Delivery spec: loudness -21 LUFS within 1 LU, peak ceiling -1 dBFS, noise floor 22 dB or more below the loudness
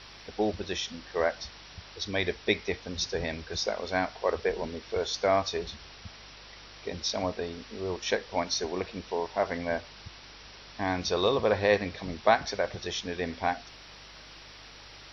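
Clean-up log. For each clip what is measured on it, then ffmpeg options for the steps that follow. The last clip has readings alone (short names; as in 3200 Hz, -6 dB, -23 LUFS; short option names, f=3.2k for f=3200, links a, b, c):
hum 50 Hz; harmonics up to 150 Hz; hum level -56 dBFS; noise floor -49 dBFS; noise floor target -53 dBFS; loudness -30.5 LUFS; peak -8.0 dBFS; loudness target -21.0 LUFS
-> -af "bandreject=f=50:t=h:w=4,bandreject=f=100:t=h:w=4,bandreject=f=150:t=h:w=4"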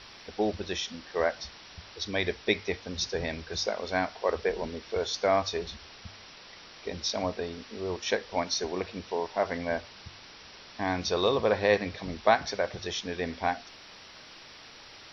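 hum none; noise floor -50 dBFS; noise floor target -53 dBFS
-> -af "afftdn=nr=6:nf=-50"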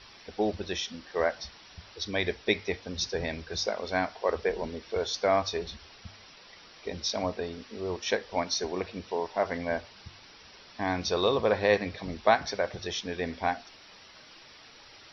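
noise floor -53 dBFS; loudness -30.5 LUFS; peak -8.0 dBFS; loudness target -21.0 LUFS
-> -af "volume=9.5dB,alimiter=limit=-1dB:level=0:latency=1"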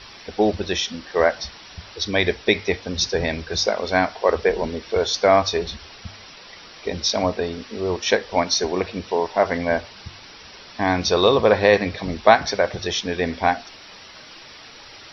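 loudness -21.0 LUFS; peak -1.0 dBFS; noise floor -43 dBFS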